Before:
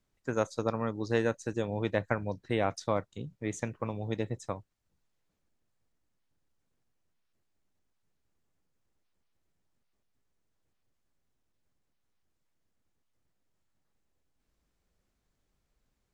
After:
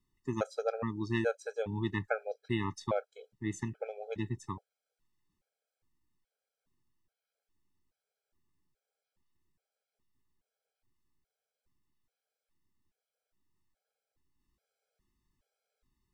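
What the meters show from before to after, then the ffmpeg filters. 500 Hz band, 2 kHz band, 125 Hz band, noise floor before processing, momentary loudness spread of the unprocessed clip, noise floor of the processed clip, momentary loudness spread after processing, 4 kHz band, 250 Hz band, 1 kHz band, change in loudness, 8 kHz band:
−3.5 dB, −2.0 dB, −2.5 dB, −79 dBFS, 8 LU, below −85 dBFS, 8 LU, −2.5 dB, −2.0 dB, −4.0 dB, −3.0 dB, −5.0 dB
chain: -af "bandreject=frequency=6700:width=11,afftfilt=real='re*gt(sin(2*PI*1.2*pts/sr)*(1-2*mod(floor(b*sr/1024/430),2)),0)':imag='im*gt(sin(2*PI*1.2*pts/sr)*(1-2*mod(floor(b*sr/1024/430),2)),0)':win_size=1024:overlap=0.75"

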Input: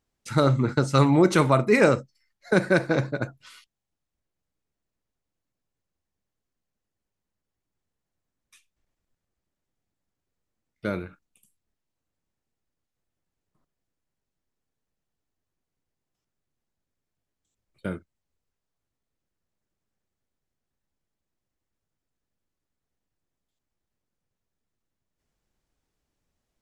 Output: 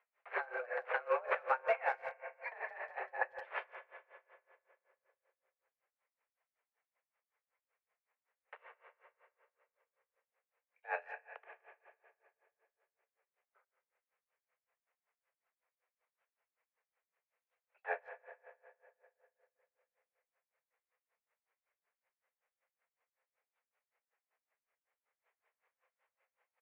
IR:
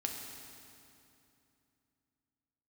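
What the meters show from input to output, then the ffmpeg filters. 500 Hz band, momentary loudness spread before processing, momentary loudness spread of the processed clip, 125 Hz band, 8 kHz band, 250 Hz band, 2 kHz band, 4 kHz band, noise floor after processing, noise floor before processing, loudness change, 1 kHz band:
−16.0 dB, 17 LU, 23 LU, below −40 dB, below −35 dB, below −40 dB, −9.5 dB, below −20 dB, below −85 dBFS, −85 dBFS, −17.0 dB, −9.5 dB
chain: -filter_complex "[0:a]aemphasis=mode=production:type=riaa,acompressor=threshold=-31dB:ratio=3,alimiter=level_in=1dB:limit=-24dB:level=0:latency=1:release=325,volume=-1dB,acontrast=26,crystalizer=i=6.5:c=0,flanger=delay=1.6:depth=9:regen=-73:speed=0.15:shape=triangular,aeval=exprs='(mod(8.91*val(0)+1,2)-1)/8.91':channel_layout=same,asplit=2[link_01][link_02];[1:a]atrim=start_sample=2205,lowpass=2200[link_03];[link_02][link_03]afir=irnorm=-1:irlink=0,volume=-0.5dB[link_04];[link_01][link_04]amix=inputs=2:normalize=0,highpass=frequency=180:width_type=q:width=0.5412,highpass=frequency=180:width_type=q:width=1.307,lowpass=frequency=2100:width_type=q:width=0.5176,lowpass=frequency=2100:width_type=q:width=0.7071,lowpass=frequency=2100:width_type=q:width=1.932,afreqshift=250,asplit=2[link_05][link_06];[link_06]adelay=170,highpass=300,lowpass=3400,asoftclip=type=hard:threshold=-26.5dB,volume=-18dB[link_07];[link_05][link_07]amix=inputs=2:normalize=0,aeval=exprs='val(0)*pow(10,-24*(0.5-0.5*cos(2*PI*5.3*n/s))/20)':channel_layout=same"

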